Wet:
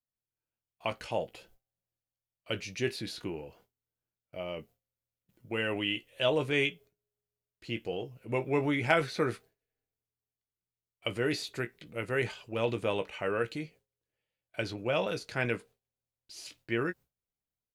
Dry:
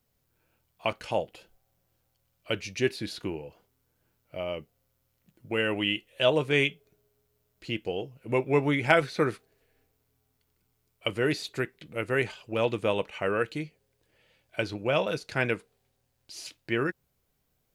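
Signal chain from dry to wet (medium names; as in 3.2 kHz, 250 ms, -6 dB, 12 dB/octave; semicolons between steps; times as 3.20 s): doubling 17 ms -10.5 dB; gate with hold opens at -50 dBFS; transient shaper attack 0 dB, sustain +4 dB; trim -4.5 dB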